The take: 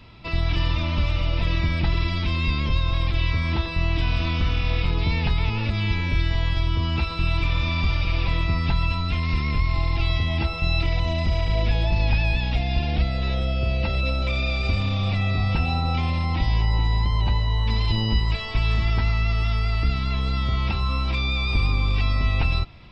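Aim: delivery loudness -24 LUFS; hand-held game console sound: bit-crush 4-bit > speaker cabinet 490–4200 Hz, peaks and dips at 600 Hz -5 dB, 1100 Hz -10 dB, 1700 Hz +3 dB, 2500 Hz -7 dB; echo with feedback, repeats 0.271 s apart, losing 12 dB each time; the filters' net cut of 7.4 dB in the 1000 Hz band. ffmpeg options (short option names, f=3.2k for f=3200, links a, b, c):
-af "equalizer=f=1k:t=o:g=-4,aecho=1:1:271|542|813:0.251|0.0628|0.0157,acrusher=bits=3:mix=0:aa=0.000001,highpass=490,equalizer=f=600:t=q:w=4:g=-5,equalizer=f=1.1k:t=q:w=4:g=-10,equalizer=f=1.7k:t=q:w=4:g=3,equalizer=f=2.5k:t=q:w=4:g=-7,lowpass=f=4.2k:w=0.5412,lowpass=f=4.2k:w=1.3066,volume=5.5dB"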